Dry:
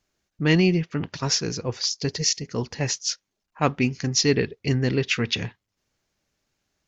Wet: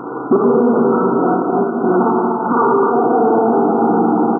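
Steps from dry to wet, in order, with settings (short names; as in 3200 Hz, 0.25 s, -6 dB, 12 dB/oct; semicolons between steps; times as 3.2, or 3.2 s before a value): speed glide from 126% -> 187%; low shelf 230 Hz +4.5 dB; notches 50/100/150/200 Hz; notch comb 210 Hz; Schroeder reverb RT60 1.1 s, DRR -7 dB; flipped gate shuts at -15 dBFS, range -25 dB; fixed phaser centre 590 Hz, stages 6; power-law curve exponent 0.35; on a send: tapped delay 58/143/244/397 ms -10/-16.5/-5.5/-14.5 dB; on the sum: FFT band-pass 120–1500 Hz; maximiser +23.5 dB; gain -5 dB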